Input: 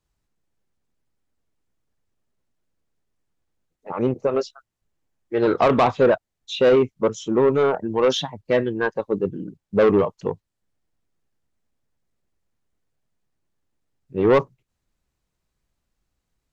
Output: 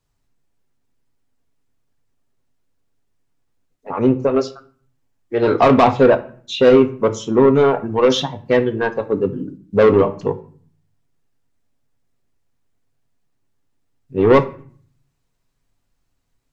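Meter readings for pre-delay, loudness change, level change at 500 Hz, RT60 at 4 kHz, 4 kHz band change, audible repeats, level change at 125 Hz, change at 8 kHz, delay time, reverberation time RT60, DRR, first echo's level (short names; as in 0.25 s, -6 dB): 4 ms, +5.0 dB, +4.5 dB, 0.35 s, +4.0 dB, none, +6.5 dB, n/a, none, 0.50 s, 6.0 dB, none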